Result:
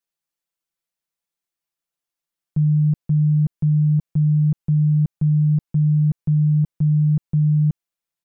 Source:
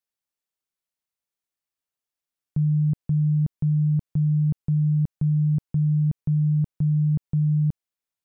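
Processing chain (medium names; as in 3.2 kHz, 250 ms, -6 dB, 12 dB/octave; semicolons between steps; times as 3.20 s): comb 5.9 ms, depth 72%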